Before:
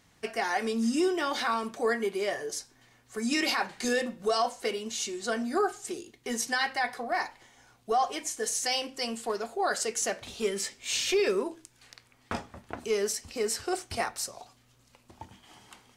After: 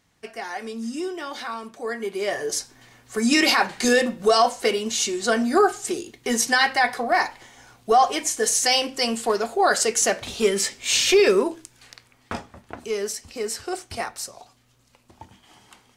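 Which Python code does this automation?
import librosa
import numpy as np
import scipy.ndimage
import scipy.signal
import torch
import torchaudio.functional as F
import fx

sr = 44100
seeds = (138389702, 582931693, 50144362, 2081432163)

y = fx.gain(x, sr, db=fx.line((1.83, -3.0), (2.53, 9.5), (11.44, 9.5), (12.54, 1.5)))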